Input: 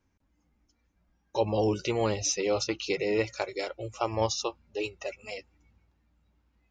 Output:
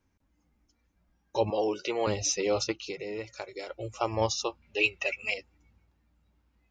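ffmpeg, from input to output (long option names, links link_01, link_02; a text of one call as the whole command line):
ffmpeg -i in.wav -filter_complex "[0:a]asettb=1/sr,asplit=3[link_01][link_02][link_03];[link_01]atrim=end=1.504[link_04];[link_02]atrim=start=1.5:end=2.07,asetpts=PTS-STARTPTS,afade=type=in:duration=0.004:curve=qsin,afade=type=out:start_time=0.566:duration=0.004:curve=qsin,acrossover=split=290 6400:gain=0.0794 1 0.0891[link_05][link_06][link_07];[link_05][link_06][link_07]amix=inputs=3:normalize=0[link_08];[link_03]atrim=start=2.066[link_09];[link_04][link_08]acrossfade=duration=0.004:curve1=hsin:curve2=qsin[link_10];[link_10][link_09]acrossfade=duration=0.004:curve1=qsin:curve2=hsin,asplit=3[link_11][link_12][link_13];[link_11]afade=type=out:start_time=2.71:duration=0.02[link_14];[link_12]acompressor=threshold=-38dB:ratio=2.5,afade=type=in:start_time=2.71:duration=0.02,afade=type=out:start_time=3.68:duration=0.02[link_15];[link_13]afade=type=in:start_time=3.68:duration=0.02[link_16];[link_14][link_15][link_16]amix=inputs=3:normalize=0,asettb=1/sr,asplit=3[link_17][link_18][link_19];[link_17]atrim=end=4.624[link_20];[link_18]atrim=start=4.62:end=5.34,asetpts=PTS-STARTPTS,afade=type=in:duration=0.004:curve=qsin,afade=type=out:start_time=0.716:duration=0.004:curve=qsin,equalizer=frequency=2500:width=1.4:gain=13.5[link_21];[link_19]atrim=start=5.336[link_22];[link_20][link_21]acrossfade=duration=0.004:curve1=hsin:curve2=qsin[link_23];[link_23][link_22]acrossfade=duration=0.004:curve1=qsin:curve2=hsin" out.wav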